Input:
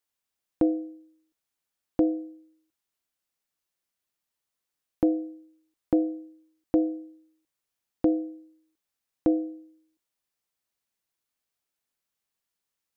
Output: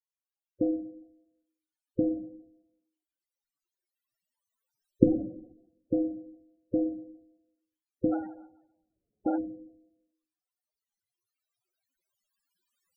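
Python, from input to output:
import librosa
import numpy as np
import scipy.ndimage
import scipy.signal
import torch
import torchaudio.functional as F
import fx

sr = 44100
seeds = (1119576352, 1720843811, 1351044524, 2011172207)

y = fx.recorder_agc(x, sr, target_db=-15.5, rise_db_per_s=6.1, max_gain_db=30)
y = fx.rev_plate(y, sr, seeds[0], rt60_s=0.88, hf_ratio=1.0, predelay_ms=0, drr_db=6.5)
y = fx.sample_hold(y, sr, seeds[1], rate_hz=1100.0, jitter_pct=20, at=(8.11, 9.36), fade=0.02)
y = fx.spec_topn(y, sr, count=16)
y = F.gain(torch.from_numpy(y), -4.5).numpy()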